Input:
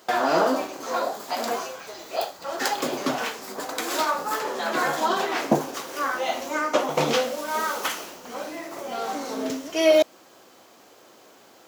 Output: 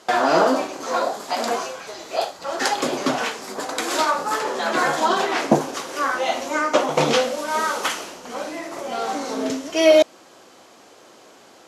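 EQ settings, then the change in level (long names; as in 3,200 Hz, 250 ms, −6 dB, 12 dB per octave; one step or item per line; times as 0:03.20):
low-pass filter 11,000 Hz 24 dB per octave
+4.0 dB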